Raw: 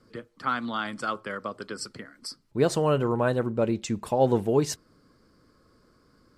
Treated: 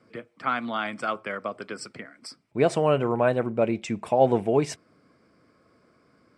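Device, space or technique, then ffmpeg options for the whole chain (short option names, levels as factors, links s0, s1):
car door speaker: -af "highpass=110,equalizer=f=680:t=q:w=4:g=8,equalizer=f=2300:t=q:w=4:g=10,equalizer=f=4300:t=q:w=4:g=-7,equalizer=f=6600:t=q:w=4:g=-7,lowpass=f=9100:w=0.5412,lowpass=f=9100:w=1.3066"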